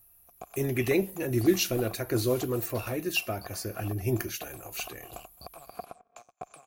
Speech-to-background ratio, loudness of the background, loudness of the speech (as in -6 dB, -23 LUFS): 18.0 dB, -48.0 LUFS, -30.0 LUFS